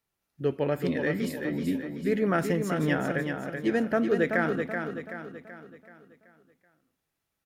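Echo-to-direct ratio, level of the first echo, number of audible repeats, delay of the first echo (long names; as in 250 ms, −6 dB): −5.0 dB, −6.0 dB, 5, 380 ms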